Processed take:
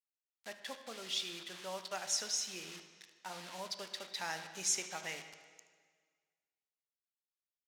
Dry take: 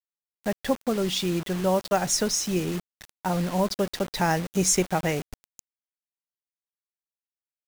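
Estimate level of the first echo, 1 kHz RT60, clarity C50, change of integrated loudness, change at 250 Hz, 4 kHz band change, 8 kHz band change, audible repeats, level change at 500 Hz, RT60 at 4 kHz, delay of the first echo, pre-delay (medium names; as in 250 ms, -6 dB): -15.5 dB, 1.7 s, 8.5 dB, -13.0 dB, -27.5 dB, -7.5 dB, -10.0 dB, 1, -21.5 dB, 1.6 s, 75 ms, 6 ms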